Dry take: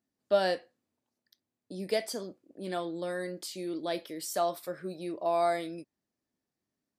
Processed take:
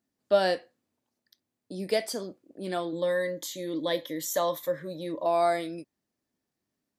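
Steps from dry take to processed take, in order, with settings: 2.92–5.26 ripple EQ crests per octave 1.1, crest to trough 13 dB; gain +3 dB

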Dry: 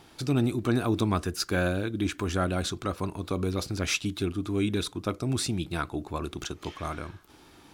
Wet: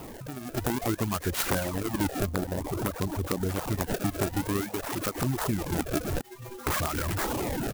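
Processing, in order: delta modulation 32 kbps, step -27 dBFS; echo 0.129 s -23.5 dB; decimation with a swept rate 25×, swing 160% 0.54 Hz; 6.21–6.67 metallic resonator 120 Hz, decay 0.52 s, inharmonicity 0.008; compressor 10:1, threshold -29 dBFS, peak gain reduction 11 dB; 2.26–3.49 LPF 1000 Hz 6 dB/oct; reverb removal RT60 0.5 s; 4.61–5.15 low shelf 250 Hz -8 dB; reverb removal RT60 0.84 s; AGC gain up to 15 dB; wrapped overs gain 9.5 dB; clock jitter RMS 0.069 ms; gain -8 dB

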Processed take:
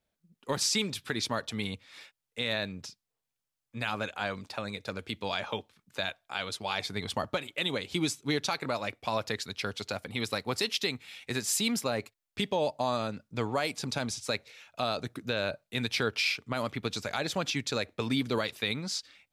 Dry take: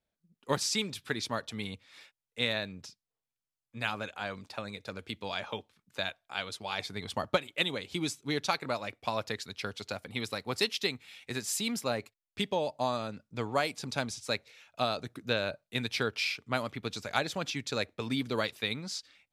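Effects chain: limiter -21.5 dBFS, peak gain reduction 9.5 dB; gain +4 dB

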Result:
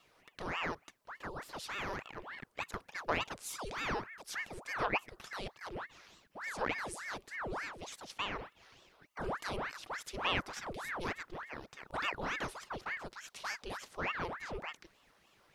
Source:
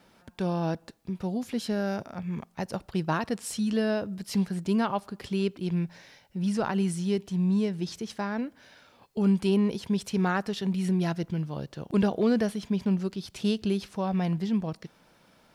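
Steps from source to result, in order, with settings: resonant low shelf 590 Hz -7.5 dB, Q 3; ring modulator with a swept carrier 1100 Hz, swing 85%, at 3.4 Hz; gain -4 dB

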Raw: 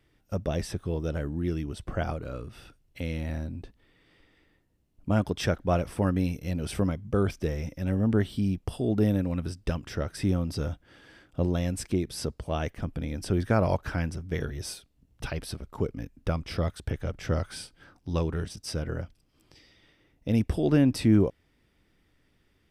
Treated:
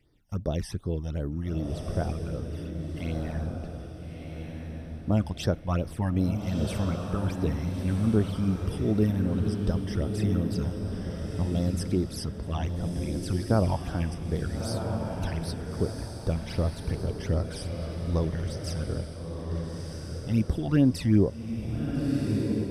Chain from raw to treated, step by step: phaser stages 12, 2.6 Hz, lowest notch 400–2700 Hz; diffused feedback echo 1.349 s, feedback 40%, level -4 dB

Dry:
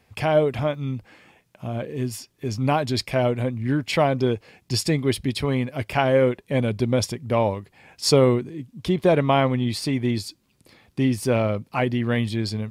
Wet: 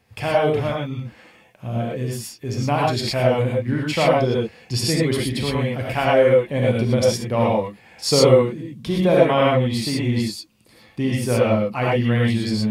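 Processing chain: non-linear reverb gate 0.14 s rising, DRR -4 dB; gain -2 dB

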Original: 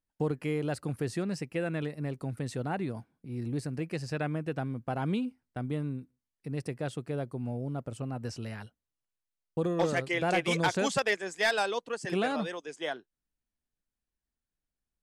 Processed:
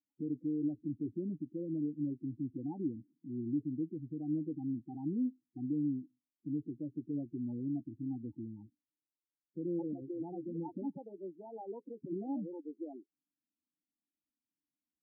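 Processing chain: HPF 94 Hz 12 dB/oct; notch 420 Hz, Q 12; limiter -26.5 dBFS, peak gain reduction 10 dB; vocal tract filter u; loudest bins only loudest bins 8; gain +6 dB

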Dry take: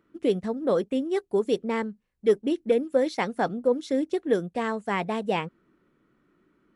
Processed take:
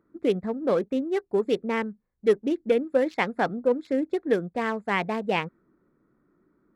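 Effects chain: Wiener smoothing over 15 samples; dynamic EQ 2200 Hz, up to +6 dB, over -46 dBFS, Q 1

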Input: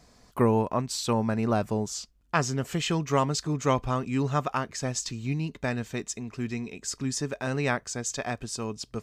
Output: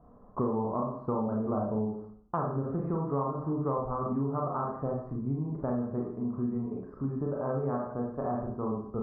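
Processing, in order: elliptic low-pass 1200 Hz, stop band 60 dB; Schroeder reverb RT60 0.49 s, combs from 29 ms, DRR -3 dB; compressor 5:1, threshold -28 dBFS, peak gain reduction 12.5 dB

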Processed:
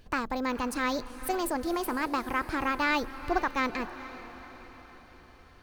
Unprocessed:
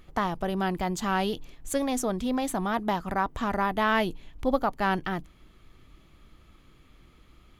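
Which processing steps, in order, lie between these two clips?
diffused feedback echo 0.623 s, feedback 54%, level -14 dB; speed mistake 33 rpm record played at 45 rpm; gain -2.5 dB

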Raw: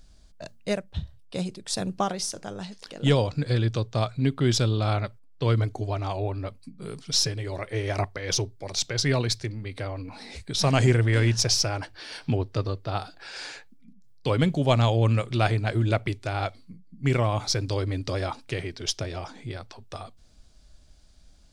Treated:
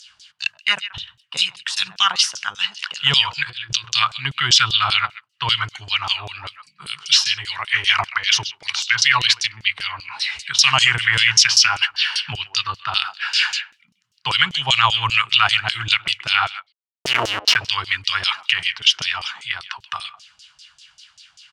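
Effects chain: EQ curve 140 Hz 0 dB, 250 Hz -20 dB, 380 Hz -21 dB, 580 Hz -28 dB, 950 Hz -1 dB, 1400 Hz +4 dB, 2800 Hz +6 dB; 3.49–3.95 negative-ratio compressor -31 dBFS, ratio -0.5; 16.59–17.56 Schmitt trigger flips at -24 dBFS; HPF 70 Hz; bell 2900 Hz +13 dB 0.23 oct; speakerphone echo 0.13 s, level -17 dB; LFO band-pass saw down 5.1 Hz 510–6500 Hz; maximiser +20 dB; gain -1 dB

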